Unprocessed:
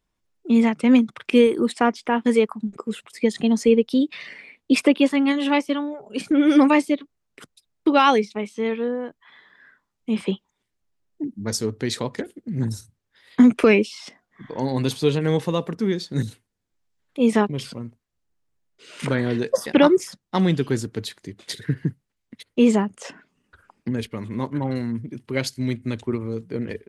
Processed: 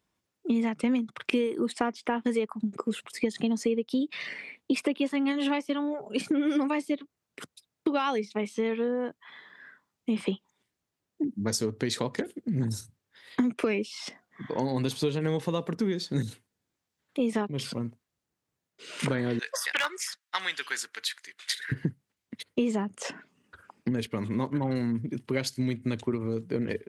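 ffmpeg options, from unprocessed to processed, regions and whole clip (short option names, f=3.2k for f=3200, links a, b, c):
-filter_complex "[0:a]asettb=1/sr,asplit=3[a][b][c];[a]atrim=end=19.394[d];[b]atrim=start=19.39:end=21.72,asetpts=PTS-STARTPTS,afade=t=in:d=0.004:c=qsin,afade=t=out:st=2.326:d=0.004:c=qsin,highpass=f=1.6k:t=q:w=1.6,aeval=exprs='0.211*(abs(mod(val(0)/0.211+3,4)-2)-1)':c=same[e];[c]atrim=start=21.716[f];[d][e]acrossfade=d=0.004:c1=hsin:c2=qsin[g];[g][f]acrossfade=d=0.004:c1=qsin:c2=hsin,highpass=94,acompressor=threshold=-26dB:ratio=6,volume=1.5dB"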